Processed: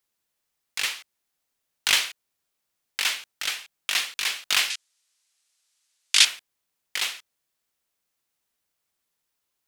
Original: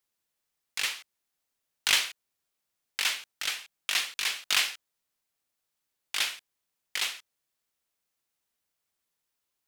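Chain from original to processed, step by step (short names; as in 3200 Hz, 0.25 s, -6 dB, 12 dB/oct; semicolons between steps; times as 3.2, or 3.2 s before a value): 4.7–6.25 weighting filter ITU-R 468; gain +3 dB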